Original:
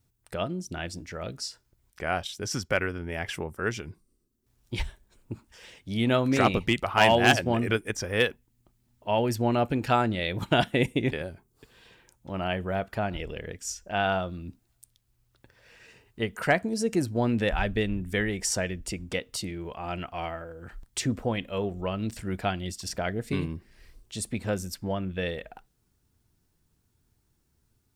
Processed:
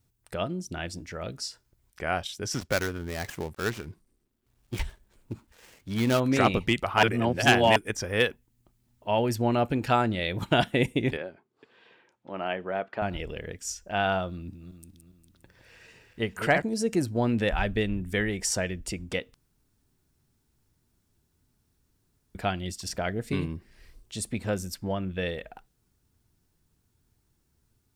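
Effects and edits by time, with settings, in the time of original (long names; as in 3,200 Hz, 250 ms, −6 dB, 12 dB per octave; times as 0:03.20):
0:02.54–0:06.20: gap after every zero crossing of 0.14 ms
0:07.03–0:07.76: reverse
0:11.17–0:13.02: band-pass filter 270–2,900 Hz
0:14.31–0:16.62: feedback delay that plays each chunk backwards 203 ms, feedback 55%, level −7 dB
0:19.34–0:22.35: fill with room tone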